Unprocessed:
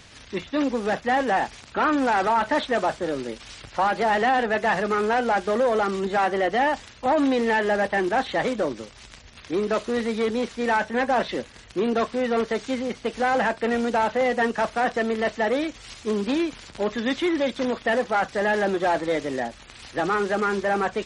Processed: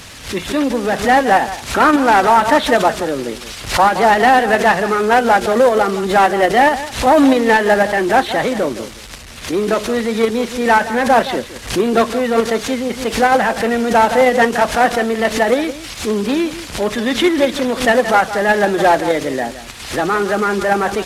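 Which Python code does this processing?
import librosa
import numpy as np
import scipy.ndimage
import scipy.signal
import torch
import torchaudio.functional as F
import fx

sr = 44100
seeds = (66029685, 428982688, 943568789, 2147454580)

p1 = fx.delta_mod(x, sr, bps=64000, step_db=-36.5)
p2 = fx.level_steps(p1, sr, step_db=21)
p3 = p1 + F.gain(torch.from_numpy(p2), -2.0).numpy()
p4 = p3 + 10.0 ** (-14.0 / 20.0) * np.pad(p3, (int(167 * sr / 1000.0), 0))[:len(p3)]
p5 = fx.pre_swell(p4, sr, db_per_s=130.0)
y = F.gain(torch.from_numpy(p5), 6.0).numpy()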